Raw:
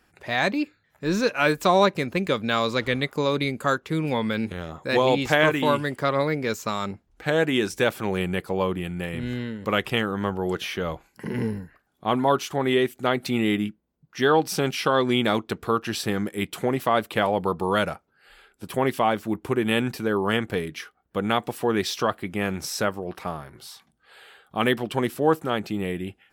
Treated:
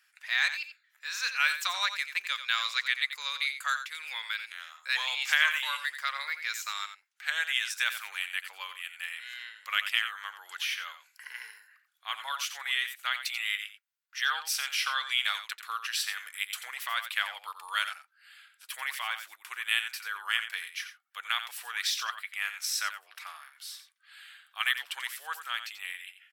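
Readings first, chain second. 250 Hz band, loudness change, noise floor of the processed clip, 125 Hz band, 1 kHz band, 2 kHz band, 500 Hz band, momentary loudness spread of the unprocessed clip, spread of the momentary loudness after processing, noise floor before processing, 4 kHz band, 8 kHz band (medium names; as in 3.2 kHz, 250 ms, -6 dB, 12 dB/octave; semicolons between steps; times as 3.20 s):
under -40 dB, -6.5 dB, -70 dBFS, under -40 dB, -11.0 dB, -1.0 dB, -35.0 dB, 11 LU, 15 LU, -68 dBFS, +0.5 dB, +0.5 dB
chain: high-pass 1.5 kHz 24 dB/octave; on a send: delay 88 ms -10.5 dB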